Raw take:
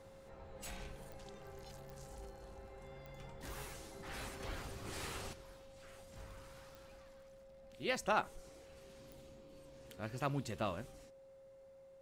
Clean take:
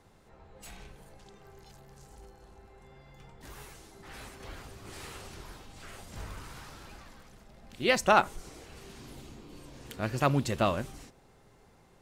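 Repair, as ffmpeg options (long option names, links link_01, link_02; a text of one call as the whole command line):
ffmpeg -i in.wav -af "adeclick=threshold=4,bandreject=frequency=540:width=30,asetnsamples=nb_out_samples=441:pad=0,asendcmd='5.33 volume volume 11.5dB',volume=0dB" out.wav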